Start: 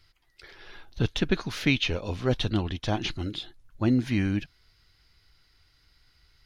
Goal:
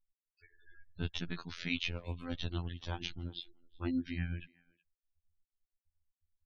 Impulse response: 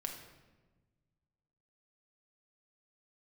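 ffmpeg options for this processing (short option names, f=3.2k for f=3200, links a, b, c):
-filter_complex "[0:a]afftfilt=real='re*gte(hypot(re,im),0.0126)':imag='im*gte(hypot(re,im),0.0126)':win_size=1024:overlap=0.75,acrossover=split=310|740[a][b][c];[b]acompressor=threshold=-44dB:ratio=16[d];[a][d][c]amix=inputs=3:normalize=0,tremolo=f=8.5:d=0.53,afftfilt=real='hypot(re,im)*cos(PI*b)':imag='0':win_size=2048:overlap=0.75,asplit=2[e][f];[f]adelay=370,highpass=300,lowpass=3.4k,asoftclip=type=hard:threshold=-22.5dB,volume=-24dB[g];[e][g]amix=inputs=2:normalize=0,volume=-4dB"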